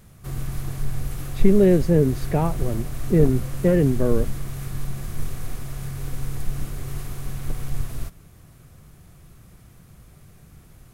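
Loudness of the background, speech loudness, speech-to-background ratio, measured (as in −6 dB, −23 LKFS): −32.5 LKFS, −20.5 LKFS, 12.0 dB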